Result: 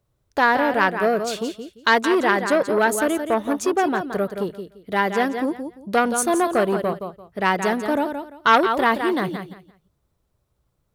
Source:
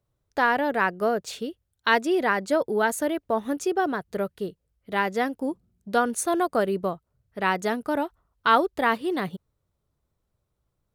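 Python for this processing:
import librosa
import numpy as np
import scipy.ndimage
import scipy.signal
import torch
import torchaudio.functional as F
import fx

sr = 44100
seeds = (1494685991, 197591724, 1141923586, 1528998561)

p1 = x + fx.echo_feedback(x, sr, ms=172, feedback_pct=22, wet_db=-9.0, dry=0)
p2 = fx.transformer_sat(p1, sr, knee_hz=1400.0)
y = p2 * 10.0 ** (5.5 / 20.0)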